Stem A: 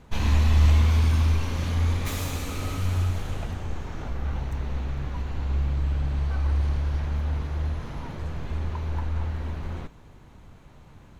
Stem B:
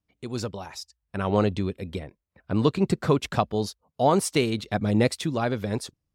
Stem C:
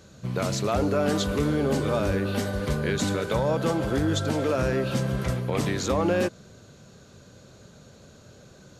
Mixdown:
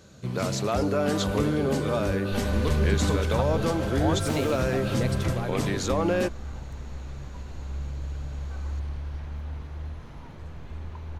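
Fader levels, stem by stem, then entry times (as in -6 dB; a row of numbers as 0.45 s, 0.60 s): -8.0 dB, -9.0 dB, -1.0 dB; 2.20 s, 0.00 s, 0.00 s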